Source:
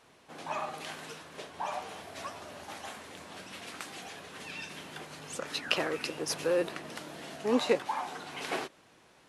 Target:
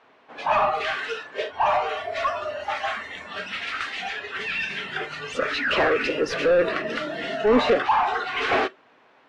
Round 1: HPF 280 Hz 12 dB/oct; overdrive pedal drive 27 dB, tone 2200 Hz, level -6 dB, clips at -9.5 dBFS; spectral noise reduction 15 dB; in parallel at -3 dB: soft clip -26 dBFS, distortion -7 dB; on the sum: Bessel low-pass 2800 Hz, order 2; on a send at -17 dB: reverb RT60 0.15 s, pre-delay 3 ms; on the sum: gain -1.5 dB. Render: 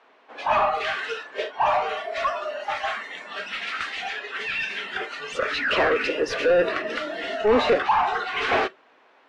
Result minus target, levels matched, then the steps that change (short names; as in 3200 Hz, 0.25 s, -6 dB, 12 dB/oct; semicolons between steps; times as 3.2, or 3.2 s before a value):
250 Hz band -3.0 dB
remove: HPF 280 Hz 12 dB/oct